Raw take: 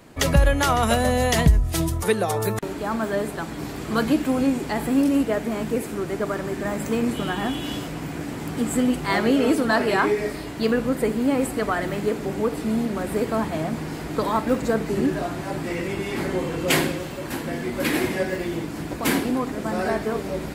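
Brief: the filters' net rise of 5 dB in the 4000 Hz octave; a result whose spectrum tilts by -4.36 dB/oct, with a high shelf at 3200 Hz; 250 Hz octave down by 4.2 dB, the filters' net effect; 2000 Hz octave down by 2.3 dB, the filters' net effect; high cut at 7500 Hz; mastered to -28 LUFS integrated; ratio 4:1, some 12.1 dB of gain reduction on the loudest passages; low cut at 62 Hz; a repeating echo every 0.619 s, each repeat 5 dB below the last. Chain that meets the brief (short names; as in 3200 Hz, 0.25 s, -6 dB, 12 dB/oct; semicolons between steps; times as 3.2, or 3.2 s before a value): HPF 62 Hz; LPF 7500 Hz; bell 250 Hz -5 dB; bell 2000 Hz -5.5 dB; high shelf 3200 Hz +5 dB; bell 4000 Hz +5 dB; compressor 4:1, threshold -28 dBFS; feedback echo 0.619 s, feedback 56%, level -5 dB; gain +2 dB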